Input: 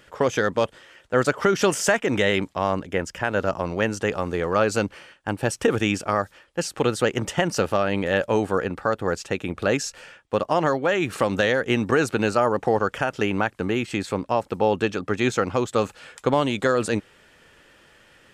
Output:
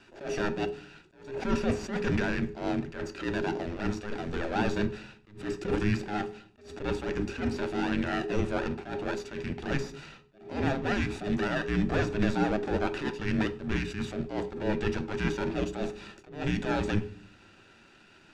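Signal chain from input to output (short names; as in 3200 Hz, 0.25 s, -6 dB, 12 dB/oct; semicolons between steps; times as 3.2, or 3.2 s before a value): minimum comb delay 0.97 ms; de-esser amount 80%; LPF 5700 Hz 12 dB/oct; bell 1100 Hz -4.5 dB 1.4 oct; frequency shift -420 Hz; reverb, pre-delay 5 ms, DRR 8.5 dB; attack slew limiter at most 120 dB/s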